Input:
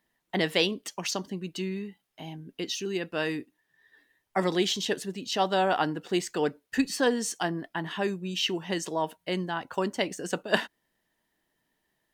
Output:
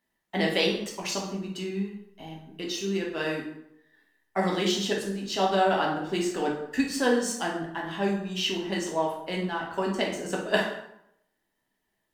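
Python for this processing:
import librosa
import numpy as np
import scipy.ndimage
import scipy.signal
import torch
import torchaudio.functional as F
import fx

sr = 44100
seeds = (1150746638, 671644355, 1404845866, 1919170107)

p1 = fx.backlash(x, sr, play_db=-31.5)
p2 = x + (p1 * 10.0 ** (-7.0 / 20.0))
p3 = fx.rev_plate(p2, sr, seeds[0], rt60_s=0.76, hf_ratio=0.7, predelay_ms=0, drr_db=-2.5)
y = p3 * 10.0 ** (-6.0 / 20.0)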